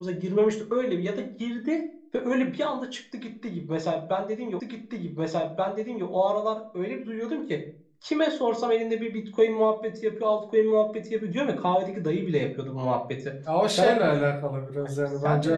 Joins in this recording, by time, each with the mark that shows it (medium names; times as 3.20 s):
4.60 s: repeat of the last 1.48 s